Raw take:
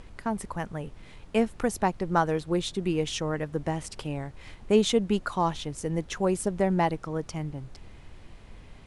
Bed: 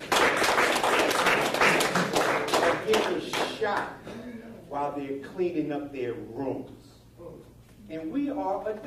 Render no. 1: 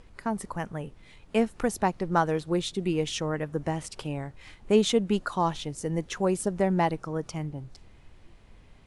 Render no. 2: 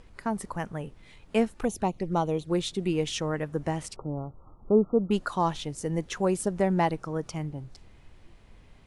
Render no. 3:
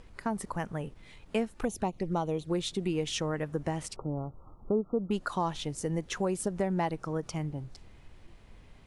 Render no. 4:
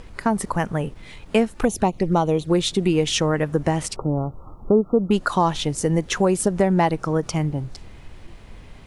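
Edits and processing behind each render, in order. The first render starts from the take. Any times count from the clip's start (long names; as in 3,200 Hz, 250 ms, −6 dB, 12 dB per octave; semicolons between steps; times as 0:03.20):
noise reduction from a noise print 6 dB
0:01.54–0:02.50: flanger swept by the level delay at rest 3.9 ms, full sweep at −24 dBFS; 0:03.96–0:05.11: linear-phase brick-wall low-pass 1,400 Hz
downward compressor 2.5 to 1, threshold −28 dBFS, peak gain reduction 8.5 dB; every ending faded ahead of time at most 490 dB per second
level +11.5 dB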